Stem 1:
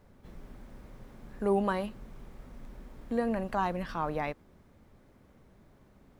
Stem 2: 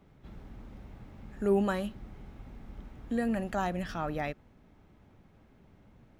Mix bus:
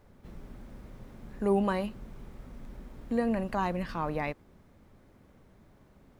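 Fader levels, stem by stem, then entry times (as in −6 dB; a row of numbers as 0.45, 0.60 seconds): +0.5, −10.5 decibels; 0.00, 0.00 seconds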